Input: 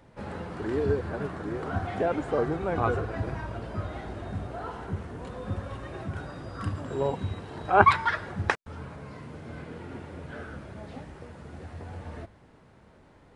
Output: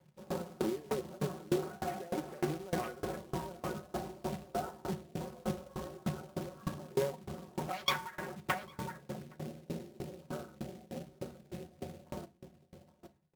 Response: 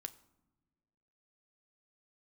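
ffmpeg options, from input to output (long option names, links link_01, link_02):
-filter_complex "[0:a]equalizer=frequency=4800:width=1:gain=-15,aeval=exprs='0.0944*(abs(mod(val(0)/0.0944+3,4)-2)-1)':channel_layout=same,afwtdn=0.00891,asplit=2[link_01][link_02];[link_02]adelay=816.3,volume=-12dB,highshelf=frequency=4000:gain=-18.4[link_03];[link_01][link_03]amix=inputs=2:normalize=0,acompressor=threshold=-31dB:ratio=6,aecho=1:1:5.4:0.65,acrusher=bits=3:mode=log:mix=0:aa=0.000001,highpass=frequency=190:poles=1,equalizer=frequency=1200:width=1.1:gain=-3.5[link_04];[1:a]atrim=start_sample=2205,asetrate=37044,aresample=44100[link_05];[link_04][link_05]afir=irnorm=-1:irlink=0,aeval=exprs='val(0)*pow(10,-26*if(lt(mod(3.3*n/s,1),2*abs(3.3)/1000),1-mod(3.3*n/s,1)/(2*abs(3.3)/1000),(mod(3.3*n/s,1)-2*abs(3.3)/1000)/(1-2*abs(3.3)/1000))/20)':channel_layout=same,volume=9dB"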